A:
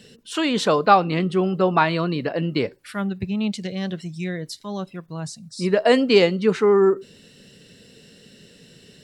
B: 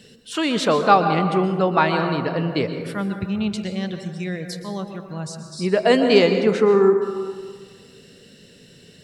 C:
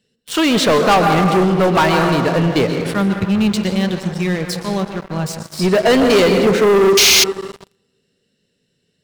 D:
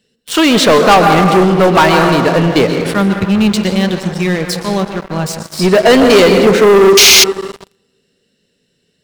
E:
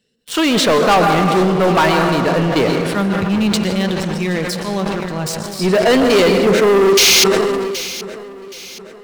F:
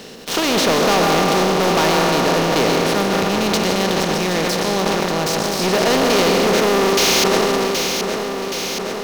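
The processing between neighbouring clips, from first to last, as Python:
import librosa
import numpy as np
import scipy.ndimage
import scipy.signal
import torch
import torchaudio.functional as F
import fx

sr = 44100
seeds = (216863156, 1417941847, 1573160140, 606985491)

y1 = fx.rev_plate(x, sr, seeds[0], rt60_s=1.7, hf_ratio=0.35, predelay_ms=110, drr_db=6.5)
y2 = fx.spec_paint(y1, sr, seeds[1], shape='noise', start_s=6.97, length_s=0.27, low_hz=2000.0, high_hz=6800.0, level_db=-11.0)
y2 = fx.leveller(y2, sr, passes=5)
y2 = y2 * 10.0 ** (-9.0 / 20.0)
y3 = fx.peak_eq(y2, sr, hz=120.0, db=-4.5, octaves=1.0)
y3 = y3 * 10.0 ** (5.5 / 20.0)
y4 = fx.echo_feedback(y3, sr, ms=773, feedback_pct=43, wet_db=-16.0)
y4 = fx.sustainer(y4, sr, db_per_s=22.0)
y4 = y4 * 10.0 ** (-5.5 / 20.0)
y5 = fx.bin_compress(y4, sr, power=0.4)
y5 = y5 * 10.0 ** (-9.0 / 20.0)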